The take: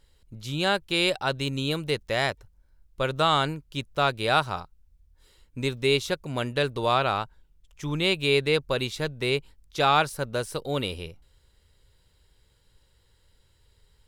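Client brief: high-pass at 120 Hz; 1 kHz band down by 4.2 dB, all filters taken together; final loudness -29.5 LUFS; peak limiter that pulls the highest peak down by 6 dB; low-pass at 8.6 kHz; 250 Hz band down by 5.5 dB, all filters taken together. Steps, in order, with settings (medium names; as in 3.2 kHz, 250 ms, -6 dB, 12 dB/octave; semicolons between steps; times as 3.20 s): high-pass 120 Hz; low-pass 8.6 kHz; peaking EQ 250 Hz -7.5 dB; peaking EQ 1 kHz -5.5 dB; trim +1 dB; peak limiter -15 dBFS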